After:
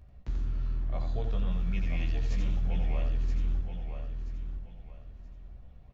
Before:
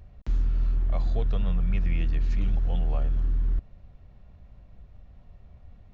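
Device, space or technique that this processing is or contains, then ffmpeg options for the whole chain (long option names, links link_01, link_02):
slapback doubling: -filter_complex "[0:a]asettb=1/sr,asplit=3[link_01][link_02][link_03];[link_01]atrim=end=1.514[link_04];[link_02]atrim=start=1.51:end=2.61,asetpts=PTS-STARTPTS,afade=type=in:duration=0.004:curve=qsin,afade=type=out:start_time=1.096:duration=0.004:curve=qsin,aemphasis=mode=production:type=75fm[link_05];[link_03]atrim=start=2.606[link_06];[link_04][link_05]acrossfade=duration=0.004:curve1=hsin:curve2=qsin[link_07];[link_07][link_06]acrossfade=duration=0.004:curve1=qsin:curve2=hsin,asplit=3[link_08][link_09][link_10];[link_09]adelay=16,volume=-4dB[link_11];[link_10]adelay=88,volume=-5dB[link_12];[link_08][link_11][link_12]amix=inputs=3:normalize=0,aecho=1:1:978|1956|2934:0.447|0.125|0.035,volume=-6dB"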